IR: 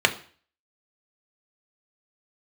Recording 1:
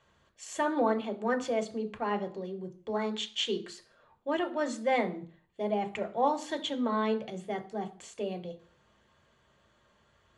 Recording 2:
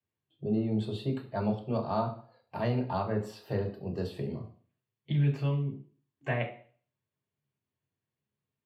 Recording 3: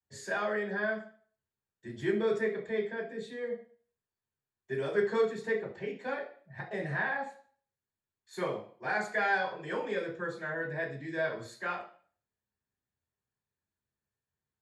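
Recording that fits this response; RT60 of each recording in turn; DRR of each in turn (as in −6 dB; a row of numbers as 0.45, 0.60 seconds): 1; 0.45, 0.45, 0.45 seconds; 4.5, −1.5, −10.0 decibels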